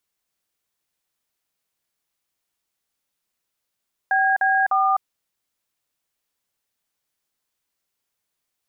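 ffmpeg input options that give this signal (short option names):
-f lavfi -i "aevalsrc='0.119*clip(min(mod(t,0.301),0.254-mod(t,0.301))/0.002,0,1)*(eq(floor(t/0.301),0)*(sin(2*PI*770*mod(t,0.301))+sin(2*PI*1633*mod(t,0.301)))+eq(floor(t/0.301),1)*(sin(2*PI*770*mod(t,0.301))+sin(2*PI*1633*mod(t,0.301)))+eq(floor(t/0.301),2)*(sin(2*PI*770*mod(t,0.301))+sin(2*PI*1209*mod(t,0.301))))':d=0.903:s=44100"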